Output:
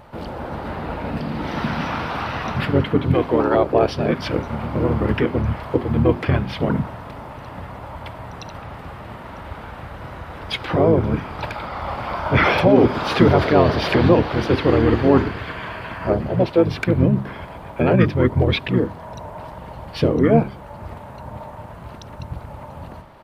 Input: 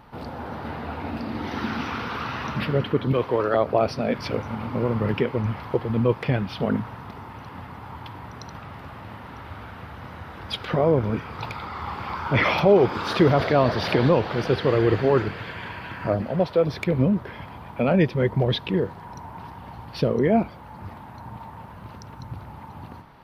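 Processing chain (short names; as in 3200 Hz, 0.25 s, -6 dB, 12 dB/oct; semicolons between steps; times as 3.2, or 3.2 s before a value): notches 50/100/150/200/250/300/350/400 Hz; harmoniser -7 st -1 dB; gain +2.5 dB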